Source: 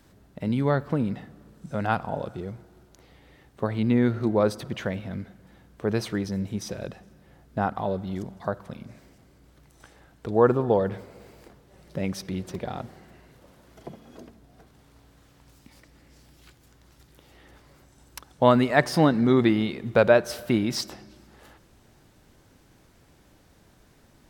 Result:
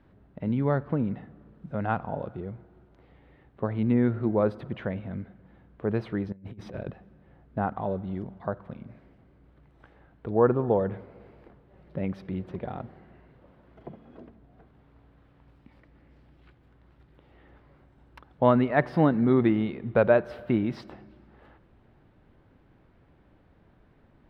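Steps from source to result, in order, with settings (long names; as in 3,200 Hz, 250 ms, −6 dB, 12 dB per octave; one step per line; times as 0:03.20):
0:06.32–0:06.90: compressor whose output falls as the input rises −36 dBFS, ratio −0.5
high-frequency loss of the air 490 metres
level −1 dB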